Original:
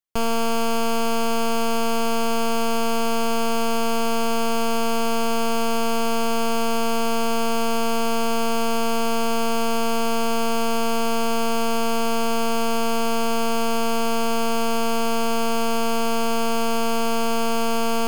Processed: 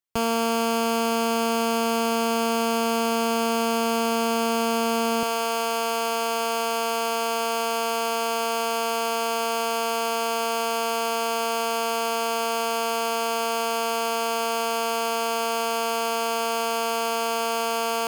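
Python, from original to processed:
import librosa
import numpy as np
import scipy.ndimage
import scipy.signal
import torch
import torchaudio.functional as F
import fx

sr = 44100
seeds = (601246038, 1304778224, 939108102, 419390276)

y = fx.highpass(x, sr, hz=fx.steps((0.0, 54.0), (5.23, 440.0)), slope=12)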